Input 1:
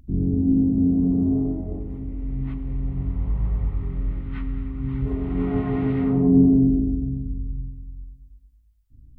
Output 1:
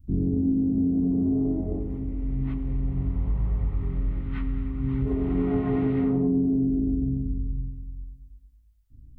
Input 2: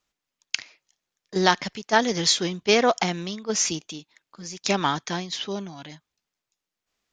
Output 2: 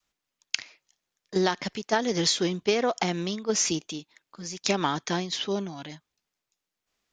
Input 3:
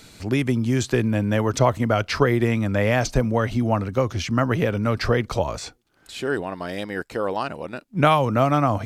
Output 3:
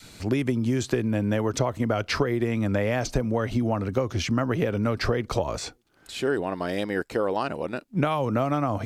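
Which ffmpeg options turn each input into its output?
-af "adynamicequalizer=threshold=0.0224:dfrequency=370:dqfactor=0.94:tfrequency=370:tqfactor=0.94:attack=5:release=100:ratio=0.375:range=2:mode=boostabove:tftype=bell,acompressor=threshold=0.1:ratio=10"

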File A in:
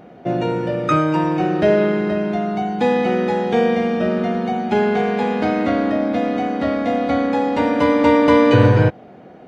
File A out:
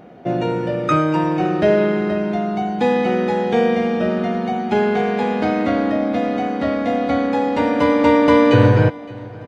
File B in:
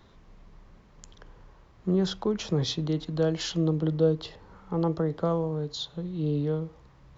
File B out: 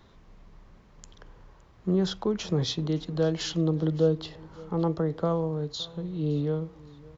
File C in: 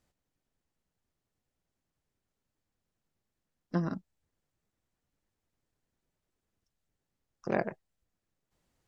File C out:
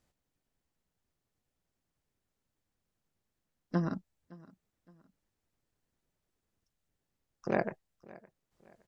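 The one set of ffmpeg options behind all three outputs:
-af "aecho=1:1:565|1130:0.0794|0.0278"

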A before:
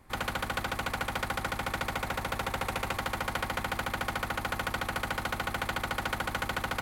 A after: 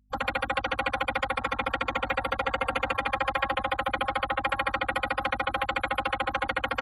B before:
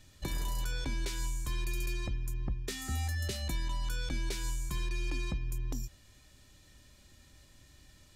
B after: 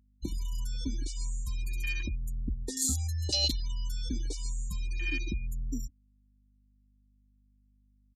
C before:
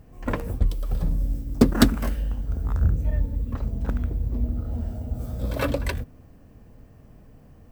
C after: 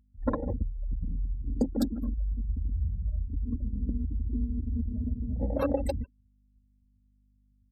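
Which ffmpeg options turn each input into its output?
-filter_complex "[0:a]acompressor=threshold=0.0316:ratio=8,bass=f=250:g=-3,treble=f=4000:g=13,bandreject=f=168.4:t=h:w=4,bandreject=f=336.8:t=h:w=4,bandreject=f=505.2:t=h:w=4,bandreject=f=673.6:t=h:w=4,bandreject=f=842:t=h:w=4,bandreject=f=1010.4:t=h:w=4,bandreject=f=1178.8:t=h:w=4,bandreject=f=1347.2:t=h:w=4,bandreject=f=1515.6:t=h:w=4,bandreject=f=1684:t=h:w=4,bandreject=f=1852.4:t=h:w=4,acontrast=72,asoftclip=type=tanh:threshold=0.266,highpass=47,asplit=2[s0][s1];[s1]adelay=150,highpass=300,lowpass=3400,asoftclip=type=hard:threshold=0.0891,volume=0.501[s2];[s0][s2]amix=inputs=2:normalize=0,afftfilt=real='re*gte(hypot(re,im),0.0631)':imag='im*gte(hypot(re,im),0.0631)':win_size=1024:overlap=0.75,afwtdn=0.0251,adynamicequalizer=threshold=0.00316:dfrequency=4000:dqfactor=1.1:tfrequency=4000:tqfactor=1.1:attack=5:release=100:ratio=0.375:range=3:mode=boostabove:tftype=bell,aeval=exprs='val(0)+0.000501*(sin(2*PI*50*n/s)+sin(2*PI*2*50*n/s)/2+sin(2*PI*3*50*n/s)/3+sin(2*PI*4*50*n/s)/4+sin(2*PI*5*50*n/s)/5)':c=same,aecho=1:1:3.7:0.57"

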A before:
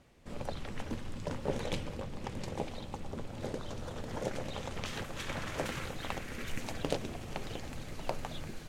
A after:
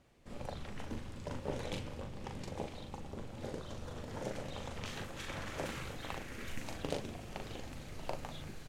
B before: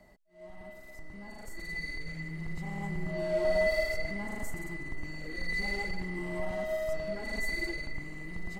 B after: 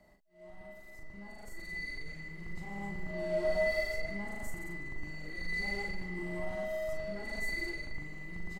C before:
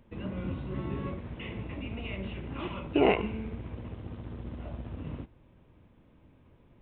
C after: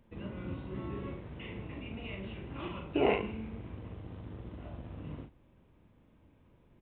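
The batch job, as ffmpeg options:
-filter_complex "[0:a]asplit=2[s0][s1];[s1]adelay=40,volume=0.562[s2];[s0][s2]amix=inputs=2:normalize=0,volume=0.562"

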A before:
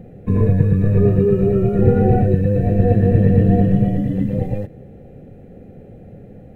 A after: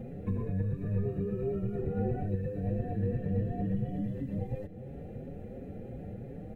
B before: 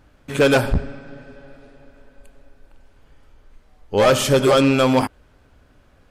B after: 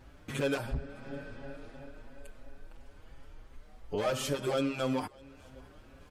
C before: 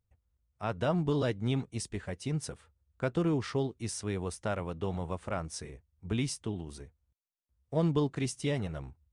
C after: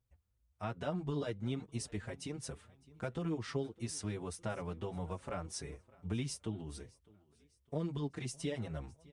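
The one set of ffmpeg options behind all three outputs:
-filter_complex "[0:a]acompressor=threshold=0.0141:ratio=2.5,asplit=2[s0][s1];[s1]aecho=0:1:608|1216|1824:0.0631|0.0297|0.0139[s2];[s0][s2]amix=inputs=2:normalize=0,asplit=2[s3][s4];[s4]adelay=5.8,afreqshift=2.9[s5];[s3][s5]amix=inputs=2:normalize=1,volume=1.26"

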